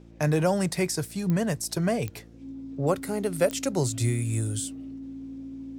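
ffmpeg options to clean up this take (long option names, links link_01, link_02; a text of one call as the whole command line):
ffmpeg -i in.wav -af "adeclick=threshold=4,bandreject=frequency=56.7:width_type=h:width=4,bandreject=frequency=113.4:width_type=h:width=4,bandreject=frequency=170.1:width_type=h:width=4,bandreject=frequency=226.8:width_type=h:width=4,bandreject=frequency=283.5:width_type=h:width=4,bandreject=frequency=340.2:width_type=h:width=4,bandreject=frequency=270:width=30" out.wav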